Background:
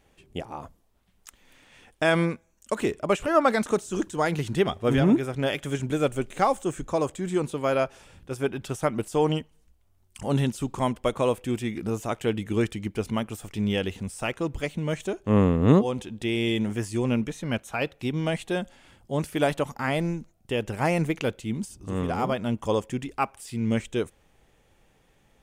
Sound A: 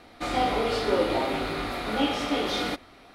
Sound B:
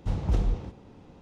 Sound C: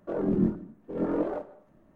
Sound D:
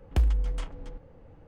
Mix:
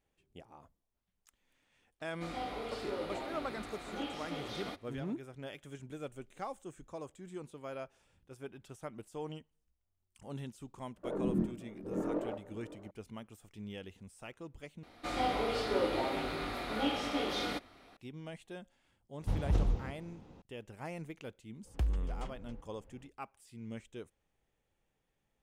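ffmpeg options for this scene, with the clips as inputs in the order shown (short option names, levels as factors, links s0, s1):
-filter_complex "[1:a]asplit=2[s0][s1];[0:a]volume=0.112[s2];[3:a]aecho=1:1:561:0.15[s3];[s2]asplit=2[s4][s5];[s4]atrim=end=14.834[s6];[s1]atrim=end=3.14,asetpts=PTS-STARTPTS,volume=0.422[s7];[s5]atrim=start=17.966[s8];[s0]atrim=end=3.14,asetpts=PTS-STARTPTS,volume=0.178,afade=t=in:d=0.004:c=hsin,afade=t=out:st=3.136:d=0.004:c=hsin,adelay=2000[s9];[s3]atrim=end=1.95,asetpts=PTS-STARTPTS,volume=0.422,afade=t=in:d=0.004:c=hsin,afade=t=out:st=1.946:d=0.004:c=hsin,adelay=10960[s10];[2:a]atrim=end=1.21,asetpts=PTS-STARTPTS,volume=0.596,afade=t=in:d=0.004:c=hsin,afade=t=out:st=1.206:d=0.004:c=hsin,adelay=19210[s11];[4:a]atrim=end=1.47,asetpts=PTS-STARTPTS,volume=0.355,afade=t=in:d=0.05,afade=t=out:st=1.42:d=0.05,adelay=21630[s12];[s6][s7]acrossfade=d=0.004:c1=hsin:c2=hsin[s13];[s13][s8]acrossfade=d=0.004:c1=hsin:c2=hsin[s14];[s14][s9][s10][s11][s12]amix=inputs=5:normalize=0"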